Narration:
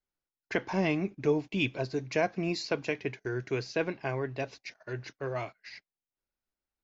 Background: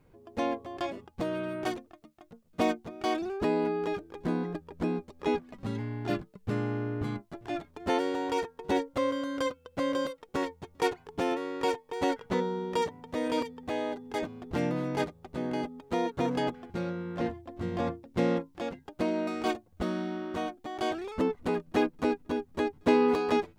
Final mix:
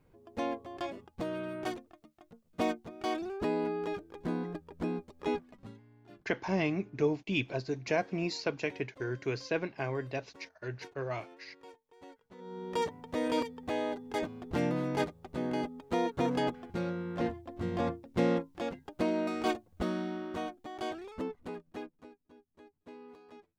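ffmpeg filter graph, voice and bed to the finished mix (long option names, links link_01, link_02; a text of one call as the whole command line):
ffmpeg -i stem1.wav -i stem2.wav -filter_complex "[0:a]adelay=5750,volume=-2dB[link_01];[1:a]volume=19.5dB,afade=type=out:start_time=5.33:duration=0.47:silence=0.0944061,afade=type=in:start_time=12.38:duration=0.53:silence=0.0668344,afade=type=out:start_time=19.72:duration=2.38:silence=0.0473151[link_02];[link_01][link_02]amix=inputs=2:normalize=0" out.wav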